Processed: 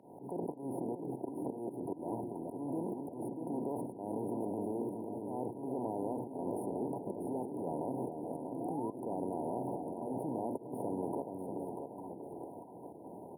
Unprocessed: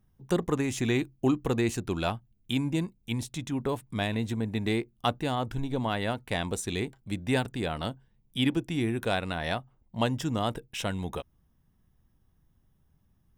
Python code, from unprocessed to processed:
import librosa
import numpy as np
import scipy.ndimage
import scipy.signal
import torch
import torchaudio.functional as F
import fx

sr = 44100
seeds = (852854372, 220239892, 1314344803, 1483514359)

p1 = fx.bin_compress(x, sr, power=0.4)
p2 = fx.level_steps(p1, sr, step_db=19)
p3 = p2 + fx.echo_alternate(p2, sr, ms=425, hz=830.0, feedback_pct=53, wet_db=-6.5, dry=0)
p4 = fx.dynamic_eq(p3, sr, hz=710.0, q=0.73, threshold_db=-51.0, ratio=4.0, max_db=-4)
p5 = fx.auto_swell(p4, sr, attack_ms=221.0)
p6 = scipy.signal.sosfilt(scipy.signal.butter(2, 130.0, 'highpass', fs=sr, output='sos'), p5)
p7 = fx.spec_paint(p6, sr, seeds[0], shape='rise', start_s=8.6, length_s=1.29, low_hz=670.0, high_hz=3800.0, level_db=-51.0)
p8 = fx.brickwall_bandstop(p7, sr, low_hz=1000.0, high_hz=9200.0)
p9 = fx.bass_treble(p8, sr, bass_db=-10, treble_db=-11)
p10 = fx.echo_feedback(p9, sr, ms=639, feedback_pct=18, wet_db=-8)
p11 = fx.band_squash(p10, sr, depth_pct=40)
y = p11 * librosa.db_to_amplitude(6.5)